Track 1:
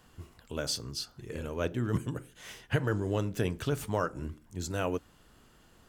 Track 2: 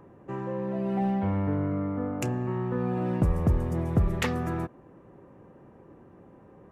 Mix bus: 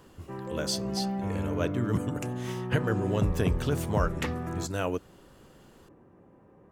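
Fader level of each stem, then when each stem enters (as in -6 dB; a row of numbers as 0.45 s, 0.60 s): +1.5 dB, -4.5 dB; 0.00 s, 0.00 s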